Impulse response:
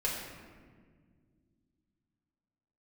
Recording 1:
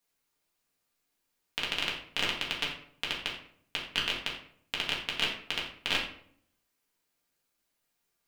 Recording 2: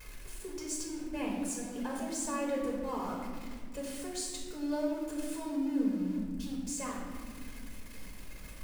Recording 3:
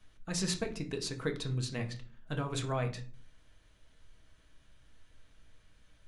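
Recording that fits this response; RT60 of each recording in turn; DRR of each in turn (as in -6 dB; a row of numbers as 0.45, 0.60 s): 2; 0.60 s, not exponential, 0.40 s; -4.5, -4.5, 3.5 dB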